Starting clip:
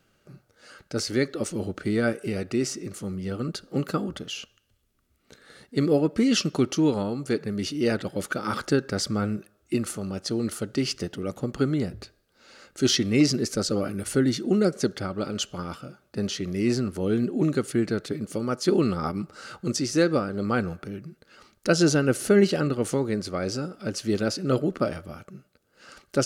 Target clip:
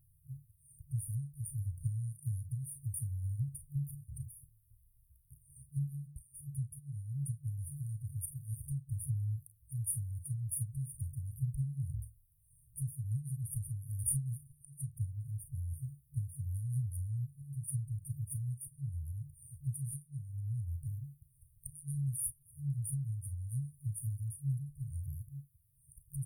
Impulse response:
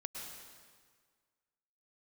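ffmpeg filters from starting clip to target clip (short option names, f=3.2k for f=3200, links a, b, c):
-af "aecho=1:1:35|48:0.266|0.178,acompressor=threshold=-29dB:ratio=6,afftfilt=real='re*(1-between(b*sr/4096,150,8900))':imag='im*(1-between(b*sr/4096,150,8900))':win_size=4096:overlap=0.75,volume=5.5dB"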